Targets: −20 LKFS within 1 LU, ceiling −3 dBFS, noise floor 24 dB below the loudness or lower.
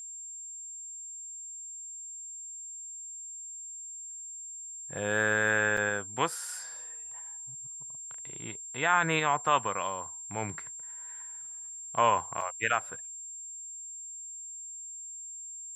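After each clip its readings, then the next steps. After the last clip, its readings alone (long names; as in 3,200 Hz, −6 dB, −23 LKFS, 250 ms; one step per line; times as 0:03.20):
number of dropouts 2; longest dropout 4.5 ms; interfering tone 7,400 Hz; level of the tone −40 dBFS; integrated loudness −33.0 LKFS; sample peak −10.5 dBFS; target loudness −20.0 LKFS
→ repair the gap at 0:05.77/0:12.41, 4.5 ms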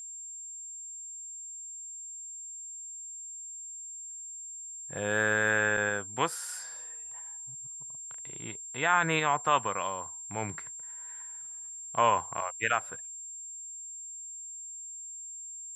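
number of dropouts 0; interfering tone 7,400 Hz; level of the tone −40 dBFS
→ notch filter 7,400 Hz, Q 30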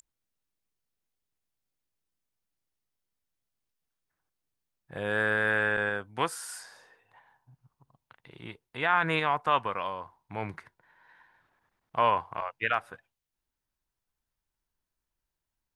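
interfering tone none found; integrated loudness −29.0 LKFS; sample peak −11.0 dBFS; target loudness −20.0 LKFS
→ level +9 dB
brickwall limiter −3 dBFS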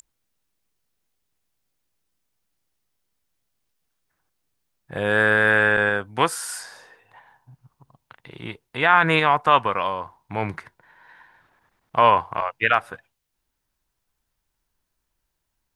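integrated loudness −20.0 LKFS; sample peak −3.0 dBFS; background noise floor −78 dBFS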